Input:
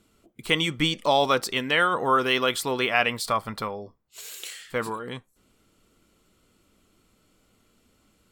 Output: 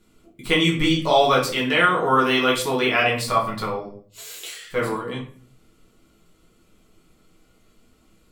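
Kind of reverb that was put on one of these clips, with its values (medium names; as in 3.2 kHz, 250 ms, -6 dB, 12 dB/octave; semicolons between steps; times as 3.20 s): simulated room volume 46 m³, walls mixed, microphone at 0.98 m; trim -2 dB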